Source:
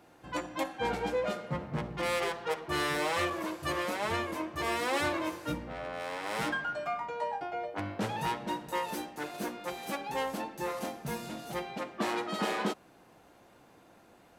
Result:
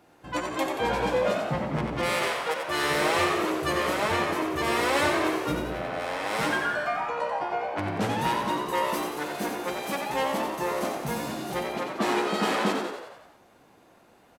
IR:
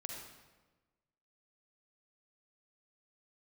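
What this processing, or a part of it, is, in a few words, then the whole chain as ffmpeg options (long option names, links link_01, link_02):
keyed gated reverb: -filter_complex "[0:a]asettb=1/sr,asplit=3[link_01][link_02][link_03];[link_01]atrim=end=2.064[link_04];[link_02]atrim=start=2.06:end=2.84,asetpts=PTS-STARTPTS,afade=type=in:duration=0.004:curve=qsin,afade=type=out:start_time=0.776:duration=0.004:curve=qsin,lowshelf=frequency=280:gain=-11[link_05];[link_03]atrim=start=2.836[link_06];[link_04][link_05]acrossfade=duration=0.004:curve1=hsin:curve2=qsin[link_07];[link_07][link_06]acrossfade=duration=0.004:curve1=qsin:curve2=hsin,asplit=3[link_08][link_09][link_10];[1:a]atrim=start_sample=2205[link_11];[link_09][link_11]afir=irnorm=-1:irlink=0[link_12];[link_10]apad=whole_len=634175[link_13];[link_12][link_13]sidechaingate=range=-33dB:threshold=-52dB:ratio=16:detection=peak,volume=2dB[link_14];[link_08][link_14]amix=inputs=2:normalize=0,asplit=8[link_15][link_16][link_17][link_18][link_19][link_20][link_21][link_22];[link_16]adelay=90,afreqshift=67,volume=-6dB[link_23];[link_17]adelay=180,afreqshift=134,volume=-11dB[link_24];[link_18]adelay=270,afreqshift=201,volume=-16.1dB[link_25];[link_19]adelay=360,afreqshift=268,volume=-21.1dB[link_26];[link_20]adelay=450,afreqshift=335,volume=-26.1dB[link_27];[link_21]adelay=540,afreqshift=402,volume=-31.2dB[link_28];[link_22]adelay=630,afreqshift=469,volume=-36.2dB[link_29];[link_15][link_23][link_24][link_25][link_26][link_27][link_28][link_29]amix=inputs=8:normalize=0"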